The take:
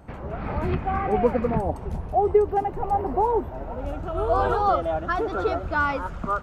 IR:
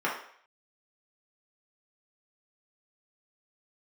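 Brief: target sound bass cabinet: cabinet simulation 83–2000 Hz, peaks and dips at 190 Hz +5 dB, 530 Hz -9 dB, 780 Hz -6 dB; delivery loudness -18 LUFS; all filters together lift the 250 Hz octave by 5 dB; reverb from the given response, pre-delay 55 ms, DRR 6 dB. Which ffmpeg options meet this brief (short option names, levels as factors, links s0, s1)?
-filter_complex "[0:a]equalizer=f=250:t=o:g=5,asplit=2[s0][s1];[1:a]atrim=start_sample=2205,adelay=55[s2];[s1][s2]afir=irnorm=-1:irlink=0,volume=0.133[s3];[s0][s3]amix=inputs=2:normalize=0,highpass=f=83:w=0.5412,highpass=f=83:w=1.3066,equalizer=f=190:t=q:w=4:g=5,equalizer=f=530:t=q:w=4:g=-9,equalizer=f=780:t=q:w=4:g=-6,lowpass=f=2000:w=0.5412,lowpass=f=2000:w=1.3066,volume=2.37"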